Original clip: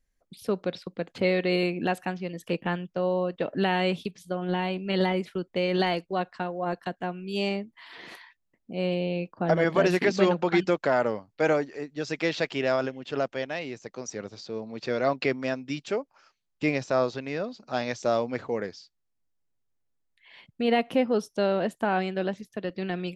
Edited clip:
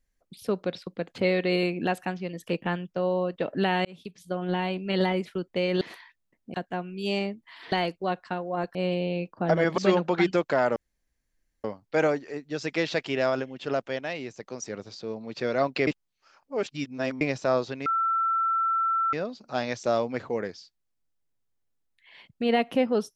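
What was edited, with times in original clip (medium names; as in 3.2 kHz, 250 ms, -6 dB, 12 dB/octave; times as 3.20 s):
3.85–4.32 s: fade in
5.81–6.84 s: swap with 8.02–8.75 s
9.78–10.12 s: delete
11.10 s: insert room tone 0.88 s
15.33–16.67 s: reverse
17.32 s: add tone 1.34 kHz -22 dBFS 1.27 s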